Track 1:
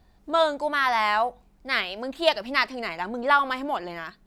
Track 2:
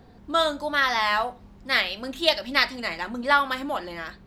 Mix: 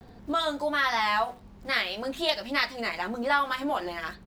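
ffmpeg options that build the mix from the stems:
-filter_complex "[0:a]acompressor=threshold=0.0501:ratio=6,aeval=exprs='val(0)*gte(abs(val(0)),0.00335)':c=same,volume=0.891,asplit=2[s0][s1];[1:a]volume=-1,adelay=8.9,volume=1.19[s2];[s1]apad=whole_len=188303[s3];[s2][s3]sidechaincompress=threshold=0.0316:ratio=8:attack=9:release=1110[s4];[s0][s4]amix=inputs=2:normalize=0"

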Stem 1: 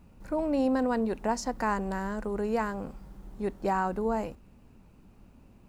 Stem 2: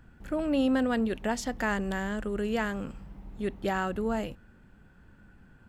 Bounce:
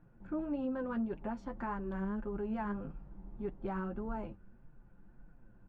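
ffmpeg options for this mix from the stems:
-filter_complex "[0:a]aecho=1:1:5.8:0.74,asubboost=boost=2.5:cutoff=120,volume=0.473[s0];[1:a]highpass=f=78:w=0.5412,highpass=f=78:w=1.3066,aemphasis=mode=production:type=cd,adelay=0.4,volume=0.531[s1];[s0][s1]amix=inputs=2:normalize=0,lowpass=1300,flanger=delay=6.2:depth=4.6:regen=33:speed=1.7:shape=triangular,alimiter=level_in=1.68:limit=0.0631:level=0:latency=1:release=203,volume=0.596"

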